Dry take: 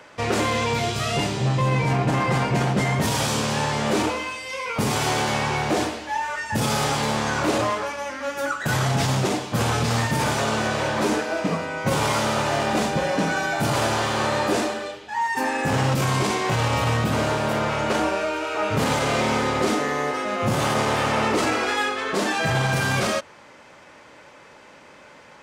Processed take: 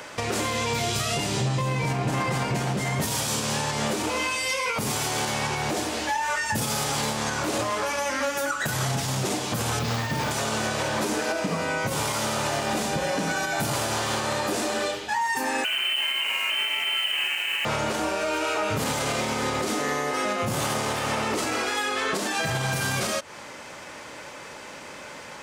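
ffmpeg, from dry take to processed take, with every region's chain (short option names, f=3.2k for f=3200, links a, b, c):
-filter_complex "[0:a]asettb=1/sr,asplit=3[a][b][c];[a]atrim=end=9.794[d];[b]atrim=start=9.79:end=10.31,asetpts=PTS-STARTPTS,afade=t=in:d=0.004:c=qsin,afade=t=out:st=0.516:d=0.004:c=qsin,lowpass=4.8k,acrusher=bits=7:mode=log:mix=0:aa=0.000001[e];[c]atrim=start=10.306[f];[d][e]acrossfade=d=0.004:c1=hsin:c2=qsin[g];[g][f]acrossfade=d=0.004:c1=qsin:c2=hsin,asettb=1/sr,asplit=3[h][i][j];[h]atrim=end=15.644[k];[i]atrim=start=15.64:end=17.65,asetpts=PTS-STARTPTS,afade=t=in:d=0.004:c=qsin,afade=t=out:st=2.006:d=0.004:c=qsin,lowpass=f=2.7k:t=q:w=0.5098,lowpass=f=2.7k:t=q:w=0.6013,lowpass=f=2.7k:t=q:w=0.9,lowpass=f=2.7k:t=q:w=2.563,afreqshift=-3200,aeval=exprs='sgn(val(0))*max(abs(val(0))-0.01,0)':c=same,highpass=230[l];[j]atrim=start=17.646[m];[k][l]acrossfade=d=0.004:c1=hsin:c2=qsin[n];[n][m]acrossfade=d=0.004:c1=qsin:c2=hsin,highshelf=f=5.5k:g=11,acompressor=threshold=-27dB:ratio=6,alimiter=limit=-22.5dB:level=0:latency=1:release=191,volume=6dB"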